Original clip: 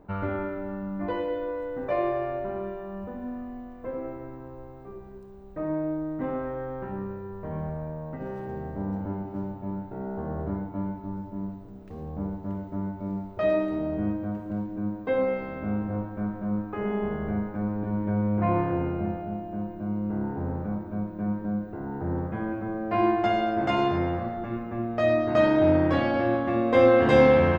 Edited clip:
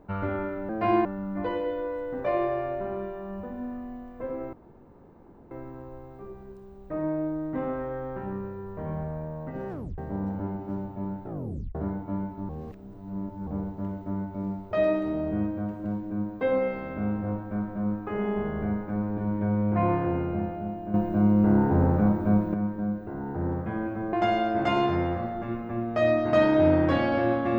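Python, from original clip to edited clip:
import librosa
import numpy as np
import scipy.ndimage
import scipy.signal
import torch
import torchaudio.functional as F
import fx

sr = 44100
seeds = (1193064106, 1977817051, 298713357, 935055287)

y = fx.edit(x, sr, fx.insert_room_tone(at_s=4.17, length_s=0.98),
    fx.tape_stop(start_s=8.36, length_s=0.28),
    fx.tape_stop(start_s=9.91, length_s=0.5),
    fx.reverse_span(start_s=11.15, length_s=0.98),
    fx.clip_gain(start_s=19.6, length_s=1.6, db=9.0),
    fx.move(start_s=22.79, length_s=0.36, to_s=0.69), tone=tone)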